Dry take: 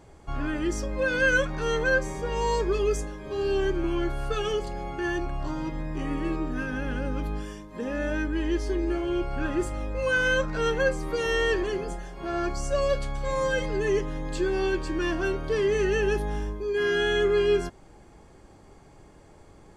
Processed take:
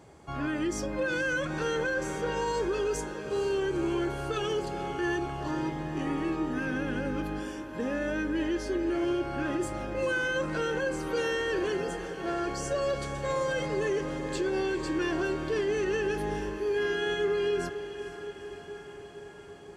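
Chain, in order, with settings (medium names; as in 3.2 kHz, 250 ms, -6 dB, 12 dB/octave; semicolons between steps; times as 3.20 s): high-pass 96 Hz 12 dB/octave; peak limiter -22.5 dBFS, peak gain reduction 9.5 dB; on a send: echo that smears into a reverb 462 ms, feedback 71%, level -12 dB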